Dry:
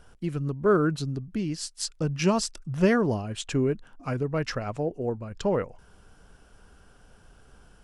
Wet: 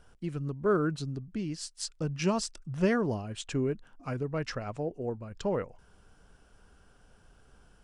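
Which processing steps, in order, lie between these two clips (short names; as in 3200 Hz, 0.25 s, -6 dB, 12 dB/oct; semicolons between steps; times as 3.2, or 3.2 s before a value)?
downsampling 22050 Hz; gain -5 dB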